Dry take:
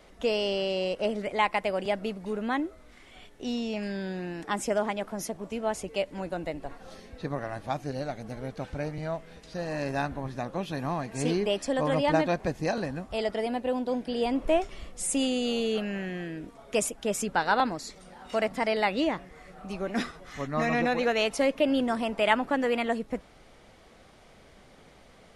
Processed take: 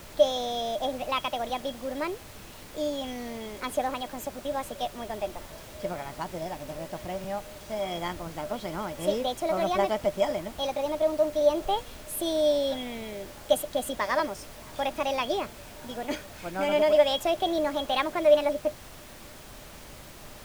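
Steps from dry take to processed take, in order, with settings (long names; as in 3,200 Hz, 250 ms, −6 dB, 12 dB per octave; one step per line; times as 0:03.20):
speed change +24%
hollow resonant body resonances 600/3,300 Hz, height 16 dB, ringing for 85 ms
background noise pink −42 dBFS
level −4 dB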